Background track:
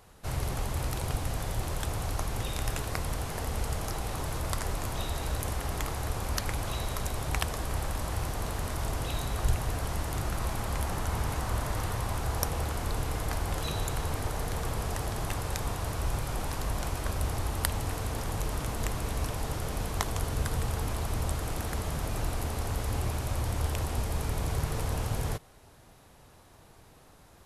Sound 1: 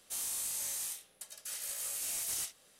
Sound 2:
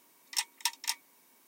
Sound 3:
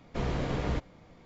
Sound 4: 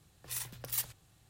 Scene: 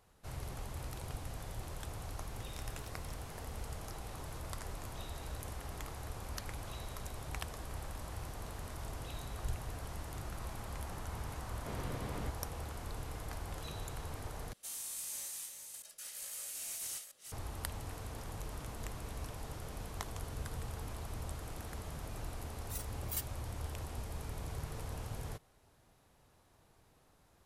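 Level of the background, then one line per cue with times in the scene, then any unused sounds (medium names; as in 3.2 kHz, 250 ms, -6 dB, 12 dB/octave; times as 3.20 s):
background track -11.5 dB
2.21 s: add 2 -14.5 dB + compression 2.5:1, threshold -46 dBFS
11.51 s: add 3 -11.5 dB
14.53 s: replace with 1 -6 dB + chunks repeated in reverse 431 ms, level -6.5 dB
22.39 s: add 4 -5 dB + spectral noise reduction 14 dB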